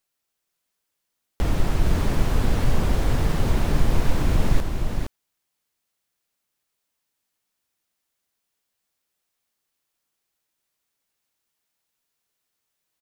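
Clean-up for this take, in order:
echo removal 464 ms −5 dB

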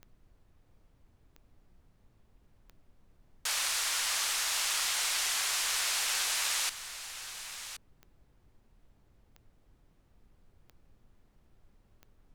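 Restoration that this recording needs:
click removal
noise reduction from a noise print 16 dB
echo removal 1,073 ms −11.5 dB

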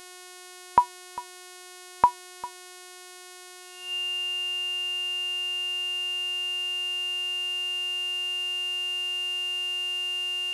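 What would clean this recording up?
hum removal 363.1 Hz, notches 32
notch filter 2,800 Hz, Q 30
downward expander −38 dBFS, range −21 dB

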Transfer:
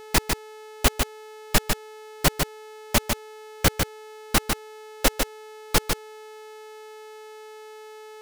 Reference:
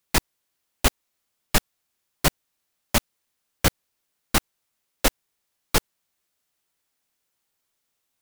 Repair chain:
hum removal 431.7 Hz, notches 34
echo removal 150 ms −5 dB

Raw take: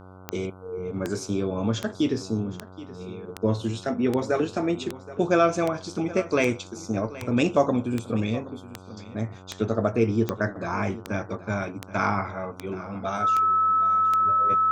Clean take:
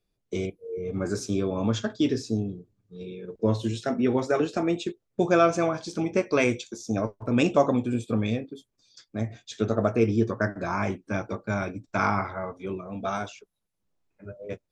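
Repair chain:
click removal
hum removal 93.2 Hz, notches 16
notch filter 1,300 Hz, Q 30
echo removal 774 ms −17 dB

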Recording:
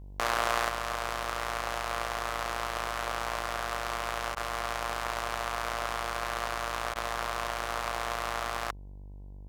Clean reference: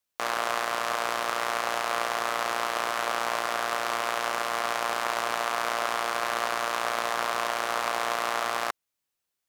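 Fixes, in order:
hum removal 48.8 Hz, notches 21
repair the gap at 0:04.35/0:06.94, 13 ms
level correction +5 dB, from 0:00.69

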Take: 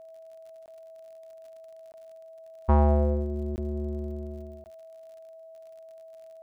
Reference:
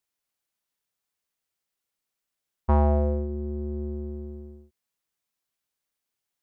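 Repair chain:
click removal
notch filter 650 Hz, Q 30
repair the gap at 0:00.66/0:01.92/0:03.56/0:04.64, 19 ms

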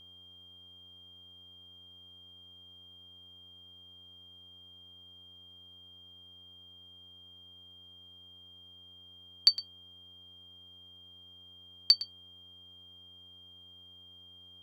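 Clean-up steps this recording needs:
hum removal 90.8 Hz, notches 16
notch filter 3,200 Hz, Q 30

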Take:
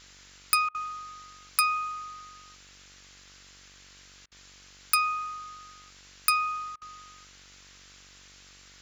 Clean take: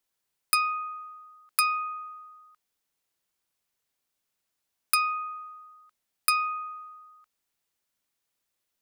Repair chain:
hum removal 47.6 Hz, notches 37
repair the gap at 0:00.69/0:04.26/0:06.76, 55 ms
noise reduction from a noise print 28 dB

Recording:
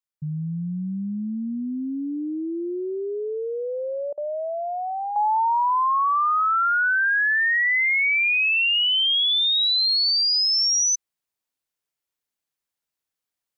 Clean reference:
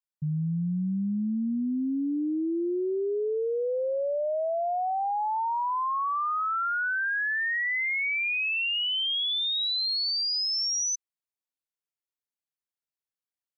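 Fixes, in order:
repair the gap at 0:04.13, 45 ms
level correction −7.5 dB, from 0:05.16

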